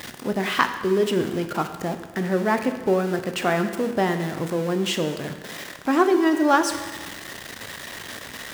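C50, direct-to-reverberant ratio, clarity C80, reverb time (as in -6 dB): 9.0 dB, 7.0 dB, 10.5 dB, 1.3 s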